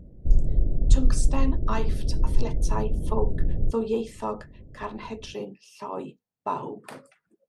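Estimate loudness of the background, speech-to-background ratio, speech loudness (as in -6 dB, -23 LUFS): -28.5 LUFS, -4.5 dB, -33.0 LUFS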